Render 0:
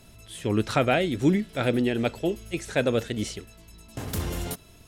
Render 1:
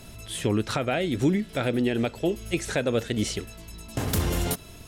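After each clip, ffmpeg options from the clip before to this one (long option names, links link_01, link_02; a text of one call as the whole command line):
ffmpeg -i in.wav -filter_complex "[0:a]asplit=2[link_01][link_02];[link_02]acompressor=threshold=-31dB:ratio=5,volume=2dB[link_03];[link_01][link_03]amix=inputs=2:normalize=0,alimiter=limit=-13.5dB:level=0:latency=1:release=371" out.wav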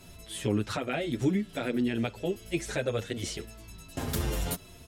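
ffmpeg -i in.wav -filter_complex "[0:a]asplit=2[link_01][link_02];[link_02]adelay=8,afreqshift=-1.3[link_03];[link_01][link_03]amix=inputs=2:normalize=1,volume=-2dB" out.wav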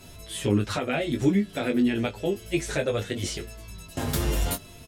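ffmpeg -i in.wav -filter_complex "[0:a]asplit=2[link_01][link_02];[link_02]adelay=20,volume=-6.5dB[link_03];[link_01][link_03]amix=inputs=2:normalize=0,volume=3.5dB" out.wav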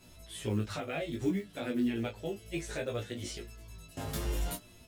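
ffmpeg -i in.wav -af "acrusher=bits=8:mode=log:mix=0:aa=0.000001,flanger=delay=16.5:depth=2.1:speed=0.63,volume=-6.5dB" out.wav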